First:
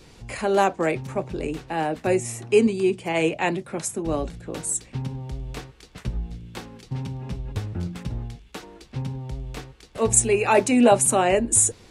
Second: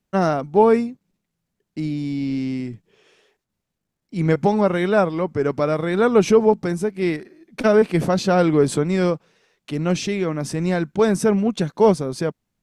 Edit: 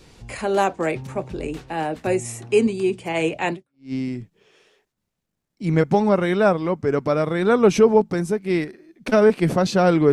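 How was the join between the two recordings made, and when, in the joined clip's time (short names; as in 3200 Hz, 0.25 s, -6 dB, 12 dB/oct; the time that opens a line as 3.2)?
first
3.73 switch to second from 2.25 s, crossfade 0.40 s exponential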